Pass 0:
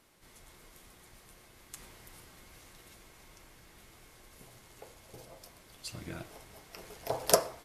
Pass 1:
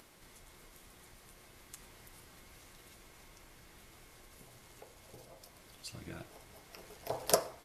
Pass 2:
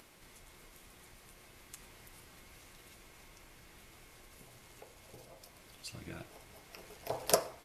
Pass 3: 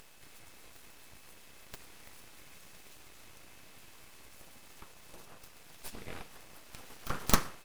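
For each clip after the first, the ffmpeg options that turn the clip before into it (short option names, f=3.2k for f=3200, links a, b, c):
-af "acompressor=mode=upward:threshold=-47dB:ratio=2.5,volume=-4dB"
-af "equalizer=f=2.5k:w=3.1:g=3"
-af "aeval=exprs='abs(val(0))':c=same,aeval=exprs='val(0)+0.0002*sin(2*PI*2600*n/s)':c=same,volume=4.5dB"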